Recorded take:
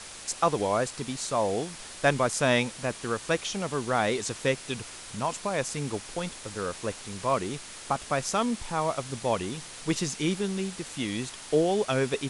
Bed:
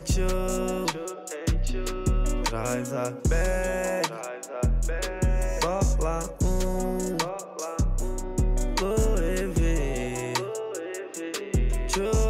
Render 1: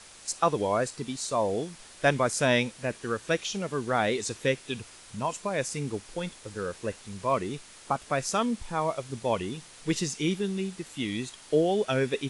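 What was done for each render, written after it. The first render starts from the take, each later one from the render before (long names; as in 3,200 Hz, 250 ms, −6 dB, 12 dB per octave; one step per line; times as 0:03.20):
noise reduction from a noise print 7 dB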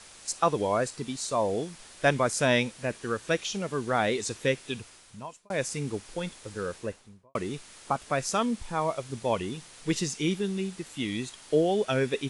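0:04.69–0:05.50: fade out
0:06.70–0:07.35: fade out and dull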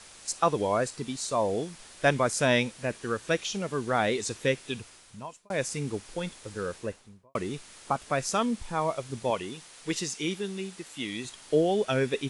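0:09.30–0:11.25: low-shelf EQ 220 Hz −10.5 dB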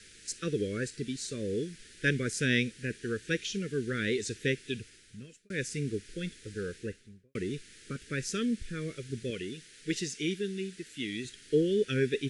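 elliptic band-stop filter 440–1,600 Hz, stop band 70 dB
high-shelf EQ 5,900 Hz −8 dB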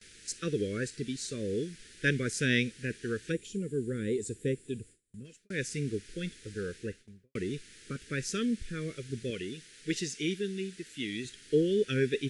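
0:03.32–0:05.25: gain on a spectral selection 560–6,800 Hz −13 dB
noise gate with hold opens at −46 dBFS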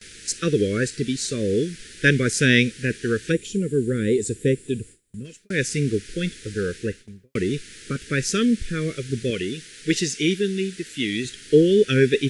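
level +11 dB
brickwall limiter −2 dBFS, peak gain reduction 1 dB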